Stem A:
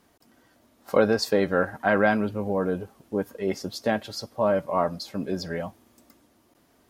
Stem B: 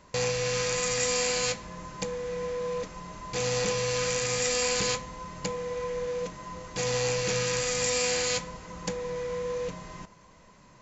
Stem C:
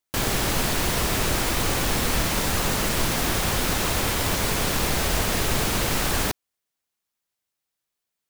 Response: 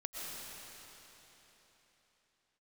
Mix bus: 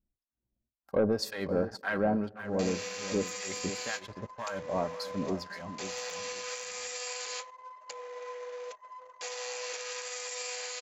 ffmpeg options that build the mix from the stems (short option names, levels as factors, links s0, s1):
-filter_complex "[0:a]acrossover=split=1000[s0][s1];[s0]aeval=exprs='val(0)*(1-1/2+1/2*cos(2*PI*1.9*n/s))':c=same[s2];[s1]aeval=exprs='val(0)*(1-1/2-1/2*cos(2*PI*1.9*n/s))':c=same[s3];[s2][s3]amix=inputs=2:normalize=0,volume=0.631,asplit=3[s4][s5][s6];[s5]volume=0.075[s7];[s6]volume=0.282[s8];[1:a]highpass=f=550:w=0.5412,highpass=f=550:w=1.3066,alimiter=limit=0.0668:level=0:latency=1:release=108,adelay=2450,volume=0.596[s9];[3:a]atrim=start_sample=2205[s10];[s7][s10]afir=irnorm=-1:irlink=0[s11];[s8]aecho=0:1:524|1048|1572:1|0.16|0.0256[s12];[s4][s9][s11][s12]amix=inputs=4:normalize=0,asoftclip=type=tanh:threshold=0.126,lowshelf=f=140:g=5.5,anlmdn=0.0158"